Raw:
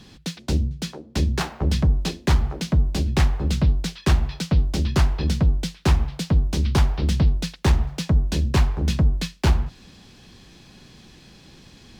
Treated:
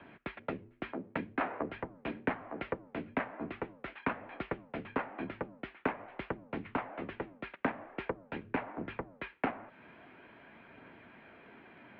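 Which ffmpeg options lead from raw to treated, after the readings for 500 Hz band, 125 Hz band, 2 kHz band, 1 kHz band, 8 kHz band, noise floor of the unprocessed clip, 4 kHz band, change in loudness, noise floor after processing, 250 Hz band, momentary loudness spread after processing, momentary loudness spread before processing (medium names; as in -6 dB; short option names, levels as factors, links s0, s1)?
-7.0 dB, -29.0 dB, -6.0 dB, -6.0 dB, under -40 dB, -49 dBFS, -23.5 dB, -17.0 dB, -62 dBFS, -13.5 dB, 18 LU, 4 LU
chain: -af "acompressor=threshold=0.0447:ratio=2.5,aphaser=in_gain=1:out_gain=1:delay=3.1:decay=0.21:speed=0.46:type=triangular,highpass=f=370:t=q:w=0.5412,highpass=f=370:t=q:w=1.307,lowpass=f=2400:t=q:w=0.5176,lowpass=f=2400:t=q:w=0.7071,lowpass=f=2400:t=q:w=1.932,afreqshift=-120,volume=1.12"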